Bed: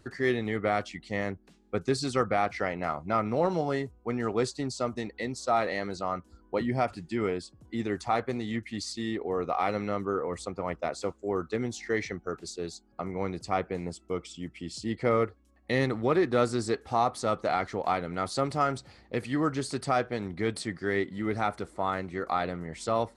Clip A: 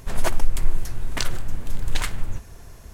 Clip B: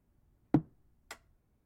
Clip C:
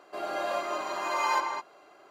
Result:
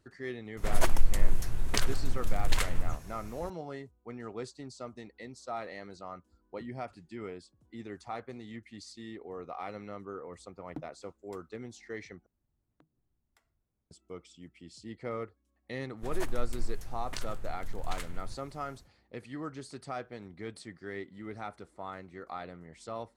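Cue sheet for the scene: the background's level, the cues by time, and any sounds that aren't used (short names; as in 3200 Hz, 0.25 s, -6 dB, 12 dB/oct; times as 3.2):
bed -12 dB
0.57 add A -3.5 dB + record warp 78 rpm, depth 100 cents
10.22 add B -15 dB + high shelf 3600 Hz +8 dB
12.26 replace with B -11 dB + compressor 8:1, threshold -53 dBFS
15.96 add A -13.5 dB, fades 0.10 s
not used: C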